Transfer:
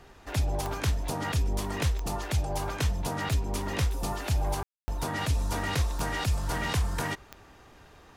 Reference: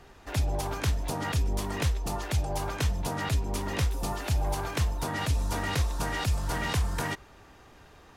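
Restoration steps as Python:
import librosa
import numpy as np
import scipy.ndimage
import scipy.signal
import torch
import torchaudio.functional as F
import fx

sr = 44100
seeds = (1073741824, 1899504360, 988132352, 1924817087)

y = fx.fix_declick_ar(x, sr, threshold=10.0)
y = fx.fix_ambience(y, sr, seeds[0], print_start_s=7.65, print_end_s=8.15, start_s=4.63, end_s=4.88)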